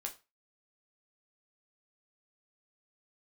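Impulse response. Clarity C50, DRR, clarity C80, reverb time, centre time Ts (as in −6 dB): 14.5 dB, 1.5 dB, 21.0 dB, 0.30 s, 11 ms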